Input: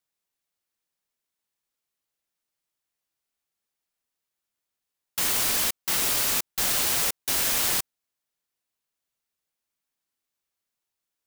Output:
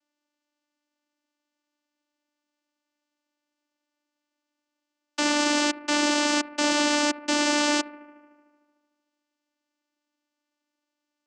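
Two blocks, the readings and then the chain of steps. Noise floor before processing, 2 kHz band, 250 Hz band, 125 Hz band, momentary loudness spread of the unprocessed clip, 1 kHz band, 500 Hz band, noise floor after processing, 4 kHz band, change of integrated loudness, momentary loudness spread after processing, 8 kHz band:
under -85 dBFS, +6.0 dB, +17.0 dB, under -10 dB, 5 LU, +8.5 dB, +11.0 dB, -84 dBFS, +2.0 dB, -0.5 dB, 6 LU, -4.0 dB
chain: analogue delay 75 ms, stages 1024, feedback 74%, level -19.5 dB; vocoder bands 8, saw 295 Hz; gain +6.5 dB

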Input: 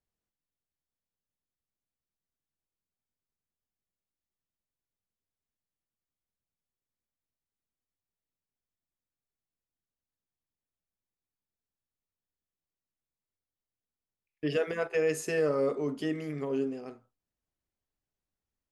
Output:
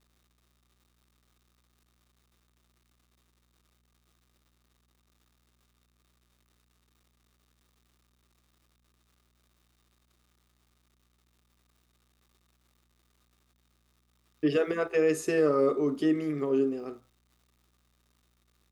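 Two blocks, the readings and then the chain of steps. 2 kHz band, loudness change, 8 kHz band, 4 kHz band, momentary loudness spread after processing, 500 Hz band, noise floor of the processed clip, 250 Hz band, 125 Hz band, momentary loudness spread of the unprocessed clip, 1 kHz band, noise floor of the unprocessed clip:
+0.5 dB, +3.5 dB, 0.0 dB, +0.5 dB, 6 LU, +3.0 dB, -71 dBFS, +6.0 dB, +0.5 dB, 8 LU, +4.5 dB, under -85 dBFS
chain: crackle 330/s -57 dBFS; buzz 60 Hz, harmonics 4, -72 dBFS -7 dB/oct; small resonant body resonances 340/1200/3700 Hz, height 9 dB, ringing for 25 ms

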